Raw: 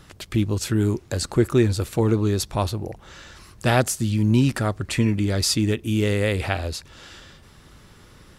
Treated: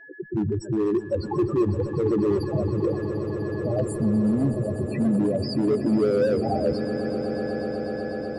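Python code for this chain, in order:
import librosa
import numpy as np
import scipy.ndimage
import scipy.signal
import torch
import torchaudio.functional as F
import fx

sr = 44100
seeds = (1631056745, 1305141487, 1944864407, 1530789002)

y = fx.wiener(x, sr, points=9)
y = scipy.signal.sosfilt(scipy.signal.butter(4, 120.0, 'highpass', fs=sr, output='sos'), y)
y = fx.fuzz(y, sr, gain_db=41.0, gate_db=-48.0)
y = fx.peak_eq(y, sr, hz=2300.0, db=-14.0, octaves=2.4)
y = y + 10.0 ** (-44.0 / 20.0) * np.sin(2.0 * np.pi * 1700.0 * np.arange(len(y)) / sr)
y = fx.bass_treble(y, sr, bass_db=-8, treble_db=-6)
y = fx.spec_topn(y, sr, count=4)
y = np.clip(10.0 ** (18.5 / 20.0) * y, -1.0, 1.0) / 10.0 ** (18.5 / 20.0)
y = fx.doubler(y, sr, ms=14.0, db=-14.0)
y = fx.echo_swell(y, sr, ms=124, loudest=8, wet_db=-15.0)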